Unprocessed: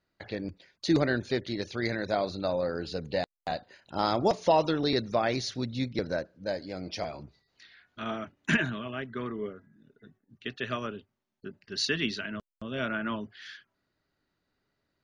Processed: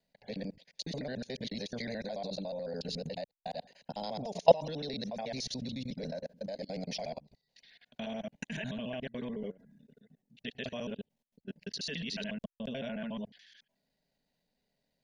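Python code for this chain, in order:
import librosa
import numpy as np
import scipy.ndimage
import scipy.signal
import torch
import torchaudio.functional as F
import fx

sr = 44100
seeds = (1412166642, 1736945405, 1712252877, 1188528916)

y = fx.local_reverse(x, sr, ms=72.0)
y = fx.fixed_phaser(y, sr, hz=340.0, stages=6)
y = fx.level_steps(y, sr, step_db=22)
y = y * librosa.db_to_amplitude(6.0)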